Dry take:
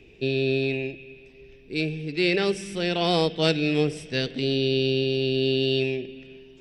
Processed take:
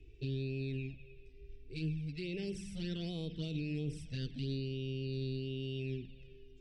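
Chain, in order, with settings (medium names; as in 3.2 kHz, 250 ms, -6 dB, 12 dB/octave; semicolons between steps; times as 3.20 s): touch-sensitive flanger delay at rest 2.8 ms, full sweep at -18 dBFS; peak limiter -21 dBFS, peak gain reduction 11.5 dB; amplifier tone stack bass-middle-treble 10-0-1; trim +10.5 dB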